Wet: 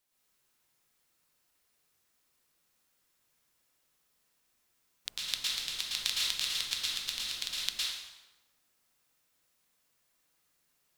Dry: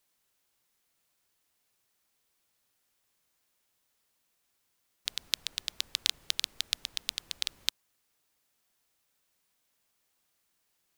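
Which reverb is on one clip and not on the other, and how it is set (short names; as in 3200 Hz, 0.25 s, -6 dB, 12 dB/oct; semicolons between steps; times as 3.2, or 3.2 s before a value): plate-style reverb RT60 1.1 s, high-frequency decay 0.75×, pre-delay 0.1 s, DRR -6 dB; gain -5 dB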